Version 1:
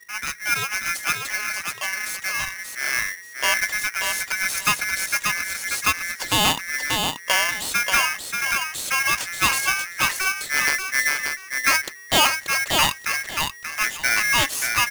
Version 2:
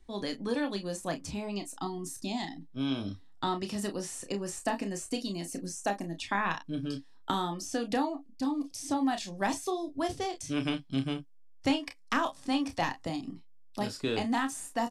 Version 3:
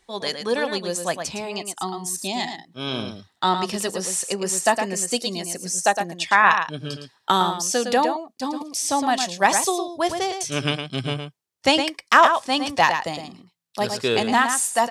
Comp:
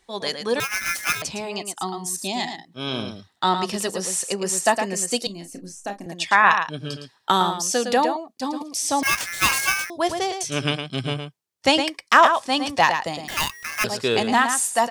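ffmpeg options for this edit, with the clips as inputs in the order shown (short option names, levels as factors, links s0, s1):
-filter_complex "[0:a]asplit=3[s0][s1][s2];[2:a]asplit=5[s3][s4][s5][s6][s7];[s3]atrim=end=0.602[s8];[s0]atrim=start=0.598:end=1.222[s9];[s4]atrim=start=1.218:end=5.272[s10];[1:a]atrim=start=5.268:end=6.062[s11];[s5]atrim=start=6.058:end=9.032[s12];[s1]atrim=start=9.028:end=9.902[s13];[s6]atrim=start=9.898:end=13.282[s14];[s2]atrim=start=13.278:end=13.842[s15];[s7]atrim=start=13.838[s16];[s8][s9]acrossfade=d=0.004:c1=hsin:c2=hsin[s17];[s17][s10]acrossfade=d=0.004:c1=hsin:c2=hsin[s18];[s18][s11]acrossfade=d=0.004:c1=hsin:c2=hsin[s19];[s19][s12]acrossfade=d=0.004:c1=hsin:c2=hsin[s20];[s20][s13]acrossfade=d=0.004:c1=hsin:c2=hsin[s21];[s21][s14]acrossfade=d=0.004:c1=hsin:c2=hsin[s22];[s22][s15]acrossfade=d=0.004:c1=hsin:c2=hsin[s23];[s23][s16]acrossfade=d=0.004:c1=hsin:c2=hsin"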